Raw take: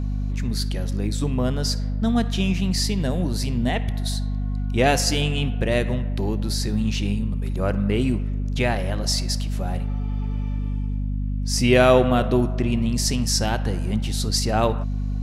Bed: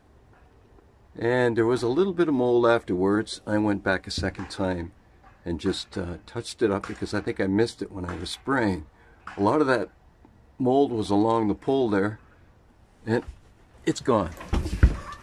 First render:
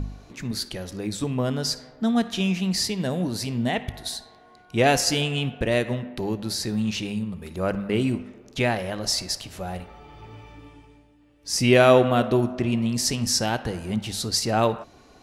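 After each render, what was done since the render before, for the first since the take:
hum removal 50 Hz, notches 5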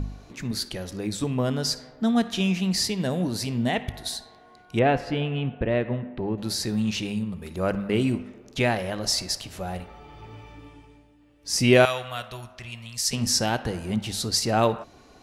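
0:04.79–0:06.38: high-frequency loss of the air 490 metres
0:11.85–0:13.13: guitar amp tone stack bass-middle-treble 10-0-10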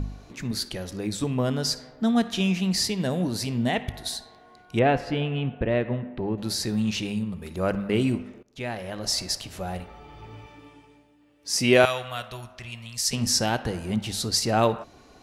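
0:08.43–0:09.27: fade in, from −20.5 dB
0:10.46–0:11.84: high-pass filter 210 Hz 6 dB per octave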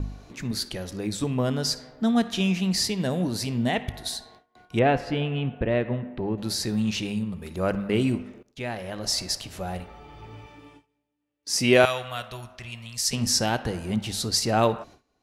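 noise gate with hold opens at −40 dBFS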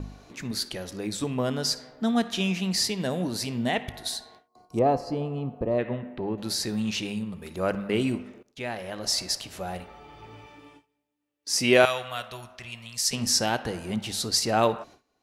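0:04.48–0:05.79: gain on a spectral selection 1,300–4,000 Hz −16 dB
low-shelf EQ 160 Hz −8.5 dB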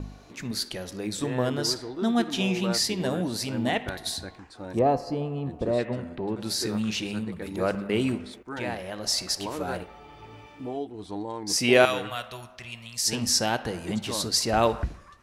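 mix in bed −12.5 dB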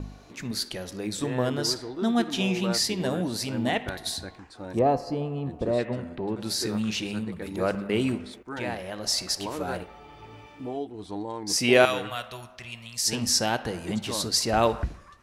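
no processing that can be heard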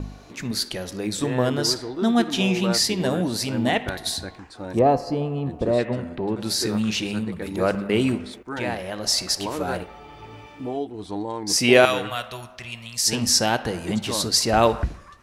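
level +4.5 dB
brickwall limiter −2 dBFS, peak gain reduction 2.5 dB

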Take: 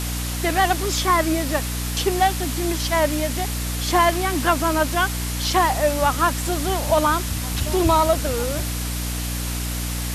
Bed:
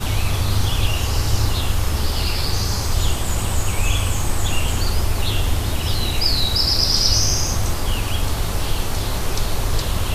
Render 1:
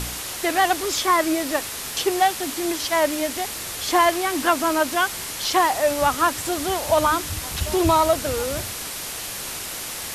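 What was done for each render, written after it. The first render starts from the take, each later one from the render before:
hum removal 60 Hz, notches 5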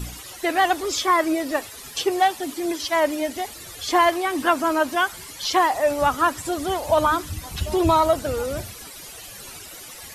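broadband denoise 14 dB, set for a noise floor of −32 dBFS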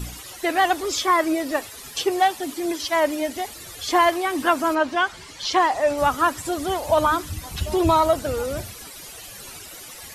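0:04.74–0:05.96: low-pass filter 4,600 Hz → 8,700 Hz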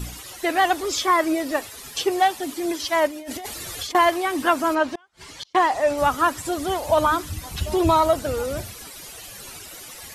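0:03.07–0:03.95: compressor whose output falls as the input rises −33 dBFS
0:04.95–0:05.55: gate with flip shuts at −22 dBFS, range −35 dB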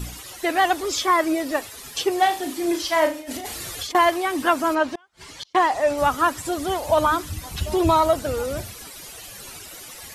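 0:02.19–0:03.70: flutter between parallel walls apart 6 metres, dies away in 0.3 s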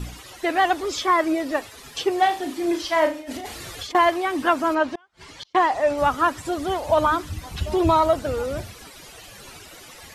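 high-shelf EQ 6,800 Hz −11.5 dB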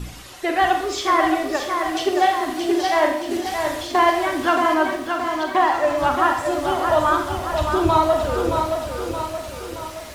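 four-comb reverb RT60 0.62 s, combs from 32 ms, DRR 4 dB
feedback echo at a low word length 623 ms, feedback 55%, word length 8 bits, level −5.5 dB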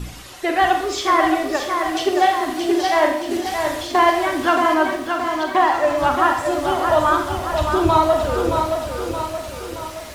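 level +1.5 dB

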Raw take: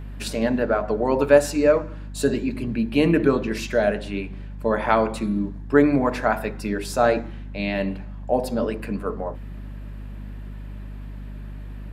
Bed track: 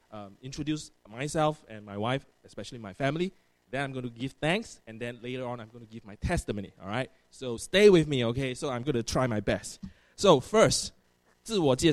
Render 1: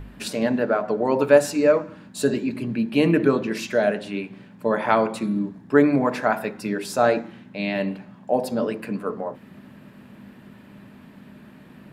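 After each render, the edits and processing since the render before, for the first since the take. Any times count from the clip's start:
hum removal 50 Hz, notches 3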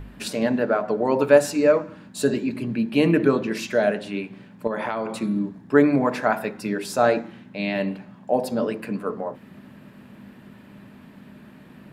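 0:04.67–0:05.20: downward compressor 10 to 1, threshold −22 dBFS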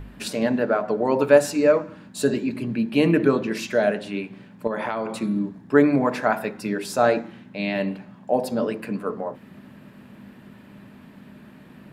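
no processing that can be heard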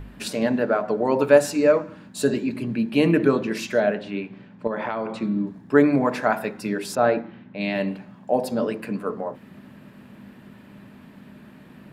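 0:03.80–0:05.47: high-frequency loss of the air 120 metres
0:06.95–0:07.61: high-frequency loss of the air 240 metres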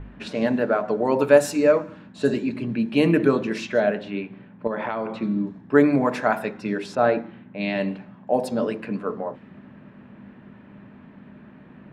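notch filter 4,700 Hz, Q 17
low-pass that shuts in the quiet parts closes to 2,000 Hz, open at −17 dBFS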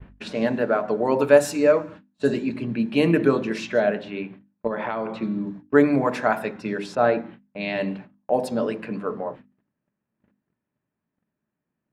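noise gate −39 dBFS, range −34 dB
mains-hum notches 50/100/150/200/250/300 Hz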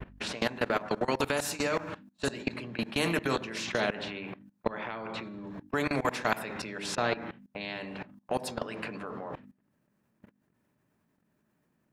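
output level in coarse steps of 22 dB
every bin compressed towards the loudest bin 2 to 1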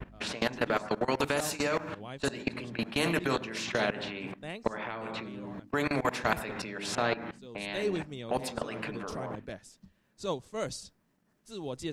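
mix in bed track −13.5 dB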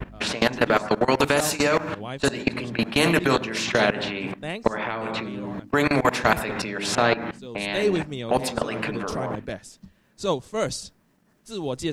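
level +9 dB
brickwall limiter −3 dBFS, peak gain reduction 1.5 dB

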